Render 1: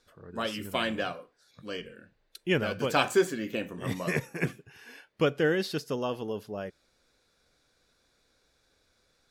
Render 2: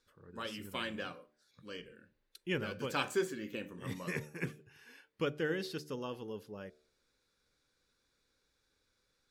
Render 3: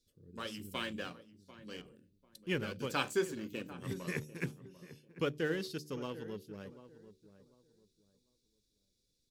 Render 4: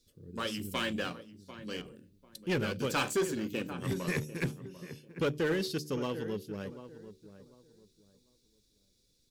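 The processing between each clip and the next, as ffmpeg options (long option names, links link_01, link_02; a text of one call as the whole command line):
ffmpeg -i in.wav -af "equalizer=frequency=680:width_type=o:width=0.24:gain=-12.5,bandreject=frequency=75.06:width_type=h:width=4,bandreject=frequency=150.12:width_type=h:width=4,bandreject=frequency=225.18:width_type=h:width=4,bandreject=frequency=300.24:width_type=h:width=4,bandreject=frequency=375.3:width_type=h:width=4,bandreject=frequency=450.36:width_type=h:width=4,bandreject=frequency=525.42:width_type=h:width=4,bandreject=frequency=600.48:width_type=h:width=4,bandreject=frequency=675.54:width_type=h:width=4,bandreject=frequency=750.6:width_type=h:width=4,volume=-8dB" out.wav
ffmpeg -i in.wav -filter_complex "[0:a]acrossover=split=440|3200[link_01][link_02][link_03];[link_02]aeval=exprs='sgn(val(0))*max(abs(val(0))-0.00266,0)':channel_layout=same[link_04];[link_01][link_04][link_03]amix=inputs=3:normalize=0,asplit=2[link_05][link_06];[link_06]adelay=744,lowpass=frequency=1100:poles=1,volume=-14dB,asplit=2[link_07][link_08];[link_08]adelay=744,lowpass=frequency=1100:poles=1,volume=0.26,asplit=2[link_09][link_10];[link_10]adelay=744,lowpass=frequency=1100:poles=1,volume=0.26[link_11];[link_05][link_07][link_09][link_11]amix=inputs=4:normalize=0,volume=1dB" out.wav
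ffmpeg -i in.wav -af "asoftclip=type=tanh:threshold=-32dB,volume=8dB" out.wav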